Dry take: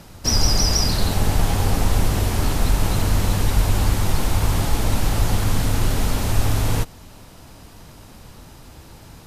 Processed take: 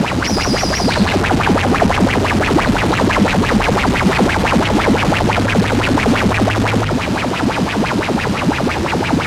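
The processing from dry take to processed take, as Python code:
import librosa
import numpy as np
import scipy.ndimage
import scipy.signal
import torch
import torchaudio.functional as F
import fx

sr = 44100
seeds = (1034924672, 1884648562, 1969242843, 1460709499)

p1 = scipy.signal.sosfilt(scipy.signal.butter(2, 86.0, 'highpass', fs=sr, output='sos'), x)
p2 = fx.high_shelf(p1, sr, hz=5200.0, db=-6.0)
p3 = fx.hum_notches(p2, sr, base_hz=50, count=3)
p4 = fx.over_compress(p3, sr, threshold_db=-37.0, ratio=-1.0)
p5 = p3 + F.gain(torch.from_numpy(p4), -2.0).numpy()
p6 = fx.fuzz(p5, sr, gain_db=39.0, gate_db=-39.0)
p7 = fx.air_absorb(p6, sr, metres=62.0)
p8 = fx.bell_lfo(p7, sr, hz=5.9, low_hz=200.0, high_hz=2600.0, db=16)
y = F.gain(torch.from_numpy(p8), -3.5).numpy()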